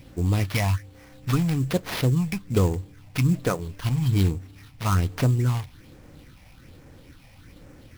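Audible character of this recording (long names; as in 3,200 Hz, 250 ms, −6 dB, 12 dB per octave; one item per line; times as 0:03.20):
phaser sweep stages 6, 1.2 Hz, lowest notch 360–3,600 Hz
aliases and images of a low sample rate 7,700 Hz, jitter 20%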